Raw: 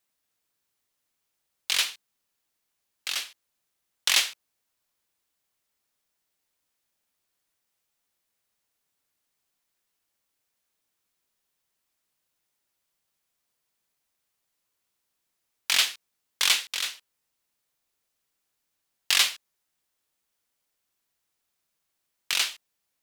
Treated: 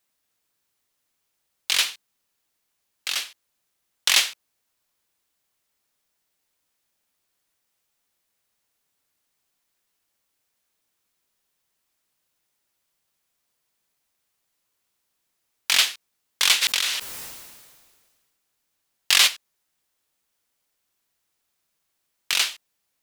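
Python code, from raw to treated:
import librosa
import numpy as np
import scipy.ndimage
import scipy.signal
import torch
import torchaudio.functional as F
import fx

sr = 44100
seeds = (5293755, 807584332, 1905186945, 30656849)

y = fx.sustainer(x, sr, db_per_s=34.0, at=(16.61, 19.26), fade=0.02)
y = y * librosa.db_to_amplitude(3.5)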